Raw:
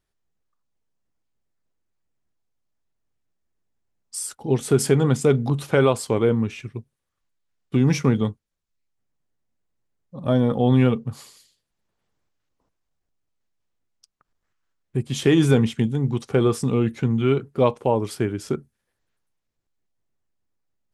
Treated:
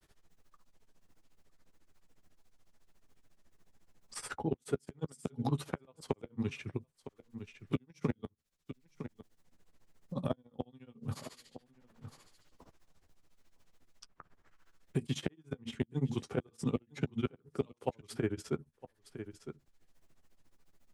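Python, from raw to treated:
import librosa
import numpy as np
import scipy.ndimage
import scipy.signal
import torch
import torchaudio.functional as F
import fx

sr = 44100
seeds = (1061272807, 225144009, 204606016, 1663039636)

y = fx.granulator(x, sr, seeds[0], grain_ms=81.0, per_s=14.0, spray_ms=10.0, spread_st=0)
y = fx.gate_flip(y, sr, shuts_db=-11.0, range_db=-37)
y = fx.doubler(y, sr, ms=12.0, db=-12)
y = y + 10.0 ** (-23.5 / 20.0) * np.pad(y, (int(958 * sr / 1000.0), 0))[:len(y)]
y = fx.band_squash(y, sr, depth_pct=70)
y = y * librosa.db_to_amplitude(-5.0)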